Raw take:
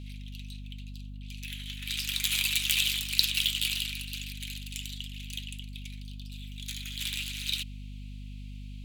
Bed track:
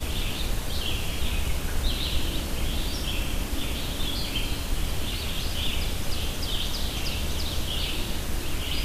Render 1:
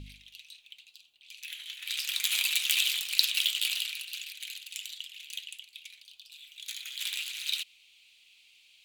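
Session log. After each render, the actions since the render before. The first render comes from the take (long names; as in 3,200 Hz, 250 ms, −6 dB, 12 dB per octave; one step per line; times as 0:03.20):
hum removal 50 Hz, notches 5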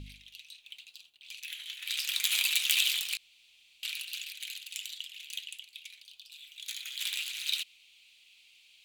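0:00.66–0:01.40: leveller curve on the samples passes 1
0:03.17–0:03.83: fill with room tone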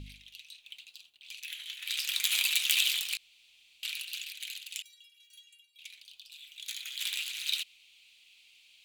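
0:04.82–0:05.79: stiff-string resonator 140 Hz, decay 0.8 s, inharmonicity 0.03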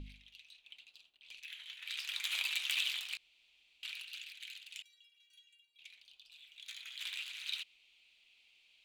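low-pass filter 1,500 Hz 6 dB per octave
parametric band 110 Hz −7 dB 1.3 octaves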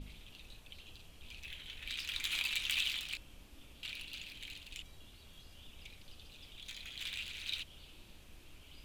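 mix in bed track −28 dB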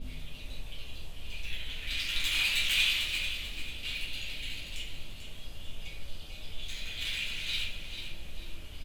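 repeating echo 442 ms, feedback 37%, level −9 dB
rectangular room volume 68 cubic metres, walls mixed, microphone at 1.6 metres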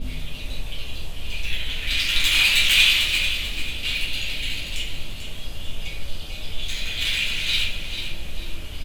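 level +11 dB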